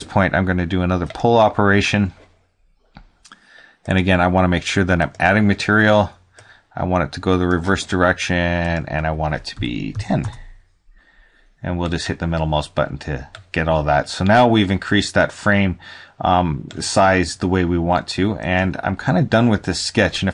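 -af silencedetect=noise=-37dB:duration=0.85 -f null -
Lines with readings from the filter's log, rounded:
silence_start: 10.53
silence_end: 11.63 | silence_duration: 1.10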